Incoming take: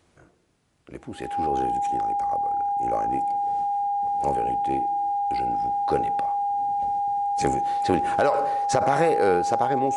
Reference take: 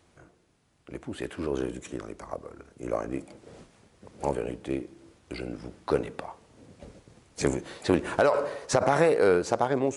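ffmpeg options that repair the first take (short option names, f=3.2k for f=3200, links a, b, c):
-af "bandreject=f=810:w=30"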